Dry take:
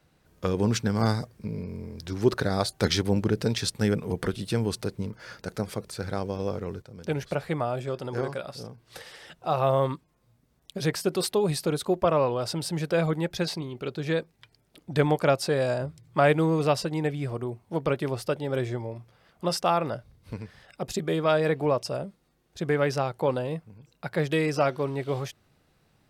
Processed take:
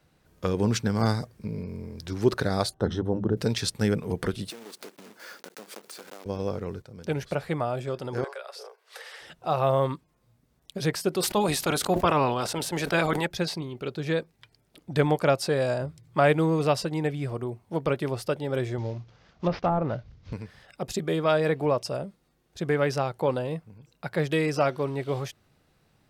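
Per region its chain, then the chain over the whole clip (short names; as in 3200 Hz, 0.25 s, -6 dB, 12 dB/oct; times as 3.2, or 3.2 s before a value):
2.74–3.37 running mean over 19 samples + notches 50/100/150/200/250 Hz
4.5–6.26 block floating point 3-bit + compressor, threshold -38 dBFS + HPF 240 Hz 24 dB/oct
8.24–9.21 steep high-pass 390 Hz 96 dB/oct + bell 1600 Hz +5 dB 1.6 oct + compressor 2:1, threshold -39 dBFS
11.22–13.25 spectral limiter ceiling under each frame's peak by 15 dB + gate -35 dBFS, range -9 dB + sustainer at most 55 dB/s
18.78–20.33 CVSD 32 kbps + treble ducked by the level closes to 890 Hz, closed at -20 dBFS + low shelf 200 Hz +7.5 dB
whole clip: dry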